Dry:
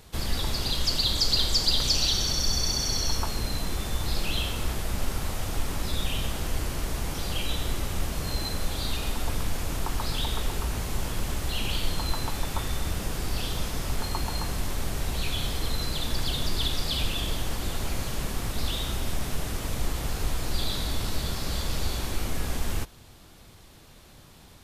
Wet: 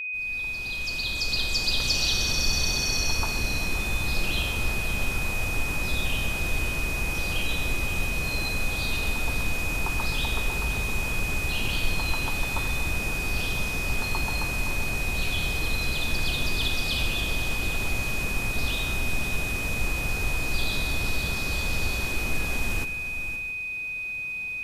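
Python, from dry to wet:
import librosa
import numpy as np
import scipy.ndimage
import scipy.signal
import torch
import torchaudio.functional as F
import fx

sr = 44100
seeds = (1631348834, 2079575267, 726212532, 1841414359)

y = fx.fade_in_head(x, sr, length_s=2.26)
y = y + 10.0 ** (-30.0 / 20.0) * np.sin(2.0 * np.pi * 2500.0 * np.arange(len(y)) / sr)
y = fx.echo_multitap(y, sr, ms=(54, 128, 519, 561, 670), db=(-17.0, -17.0, -12.0, -19.0, -18.0))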